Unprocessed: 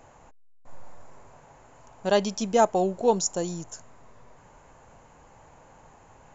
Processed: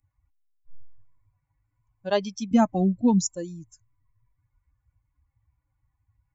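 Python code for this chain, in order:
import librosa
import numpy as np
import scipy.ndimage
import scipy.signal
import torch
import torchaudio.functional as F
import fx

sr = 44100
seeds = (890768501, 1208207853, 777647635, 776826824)

y = fx.bin_expand(x, sr, power=2.0)
y = fx.low_shelf_res(y, sr, hz=330.0, db=9.0, q=3.0, at=(2.51, 3.25))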